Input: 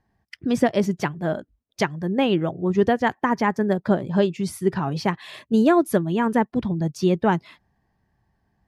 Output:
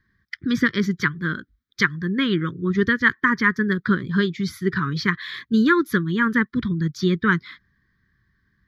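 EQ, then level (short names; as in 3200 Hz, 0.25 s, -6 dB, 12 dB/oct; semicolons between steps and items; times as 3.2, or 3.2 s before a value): Butterworth band-stop 730 Hz, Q 0.9; band shelf 1700 Hz +9.5 dB 2.6 oct; fixed phaser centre 2700 Hz, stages 6; +2.0 dB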